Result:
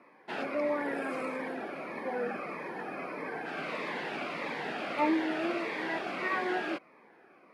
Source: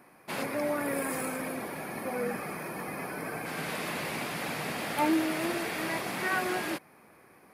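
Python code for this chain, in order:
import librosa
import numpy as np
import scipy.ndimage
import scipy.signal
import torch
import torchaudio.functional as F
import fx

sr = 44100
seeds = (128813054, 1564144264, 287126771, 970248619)

y = fx.bandpass_edges(x, sr, low_hz=310.0, high_hz=2700.0)
y = fx.notch_cascade(y, sr, direction='falling', hz=1.6)
y = y * 10.0 ** (2.5 / 20.0)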